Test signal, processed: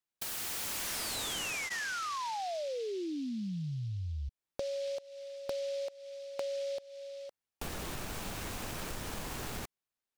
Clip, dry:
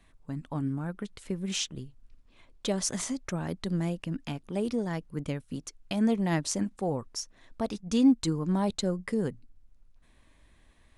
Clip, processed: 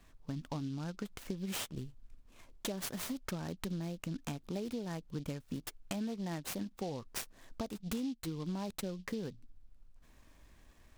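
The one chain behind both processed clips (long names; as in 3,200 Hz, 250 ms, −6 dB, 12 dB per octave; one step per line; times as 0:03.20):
notch filter 2,000 Hz, Q 17
downward compressor 12 to 1, threshold −35 dBFS
short delay modulated by noise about 3,800 Hz, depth 0.049 ms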